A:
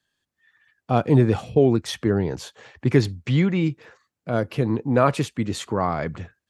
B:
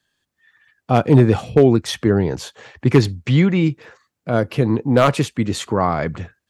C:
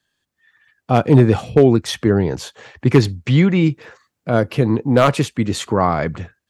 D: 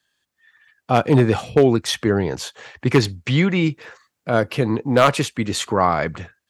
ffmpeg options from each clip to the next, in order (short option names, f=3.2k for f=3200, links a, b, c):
-af "aeval=exprs='0.422*(abs(mod(val(0)/0.422+3,4)-2)-1)':c=same,volume=5dB"
-af "dynaudnorm=f=150:g=9:m=11.5dB,volume=-1dB"
-af "lowshelf=f=500:g=-7.5,volume=2dB"